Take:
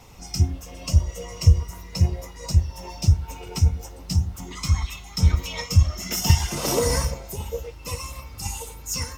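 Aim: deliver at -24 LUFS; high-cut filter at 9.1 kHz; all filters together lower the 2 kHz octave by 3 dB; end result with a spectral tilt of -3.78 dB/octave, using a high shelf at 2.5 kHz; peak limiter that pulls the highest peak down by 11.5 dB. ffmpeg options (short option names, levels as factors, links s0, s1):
-af "lowpass=9100,equalizer=f=2000:t=o:g=-6.5,highshelf=f=2500:g=5,volume=1.5,alimiter=limit=0.282:level=0:latency=1"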